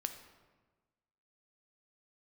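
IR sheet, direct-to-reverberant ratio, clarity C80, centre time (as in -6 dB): 7.0 dB, 11.0 dB, 16 ms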